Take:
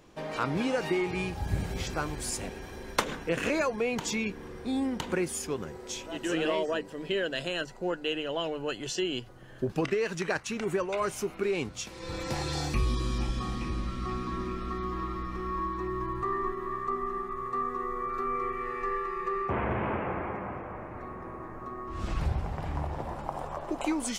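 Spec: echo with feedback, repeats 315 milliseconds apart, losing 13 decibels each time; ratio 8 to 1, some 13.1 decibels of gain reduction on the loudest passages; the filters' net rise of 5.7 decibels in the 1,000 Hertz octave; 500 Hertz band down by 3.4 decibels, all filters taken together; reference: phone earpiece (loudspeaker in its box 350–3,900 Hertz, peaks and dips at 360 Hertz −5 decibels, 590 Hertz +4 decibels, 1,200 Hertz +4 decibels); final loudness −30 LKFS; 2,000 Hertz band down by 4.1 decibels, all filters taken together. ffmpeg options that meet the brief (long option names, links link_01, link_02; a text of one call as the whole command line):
ffmpeg -i in.wav -af "equalizer=frequency=500:width_type=o:gain=-4.5,equalizer=frequency=1000:width_type=o:gain=7,equalizer=frequency=2000:width_type=o:gain=-8.5,acompressor=threshold=-34dB:ratio=8,highpass=350,equalizer=frequency=360:width_type=q:width=4:gain=-5,equalizer=frequency=590:width_type=q:width=4:gain=4,equalizer=frequency=1200:width_type=q:width=4:gain=4,lowpass=frequency=3900:width=0.5412,lowpass=frequency=3900:width=1.3066,aecho=1:1:315|630|945:0.224|0.0493|0.0108,volume=8.5dB" out.wav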